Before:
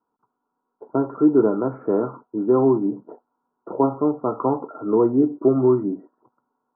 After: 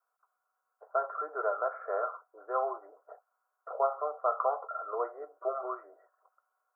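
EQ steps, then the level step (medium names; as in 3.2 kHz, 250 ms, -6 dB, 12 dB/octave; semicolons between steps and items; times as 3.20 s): steep high-pass 660 Hz 36 dB/octave; static phaser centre 910 Hz, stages 6; +4.0 dB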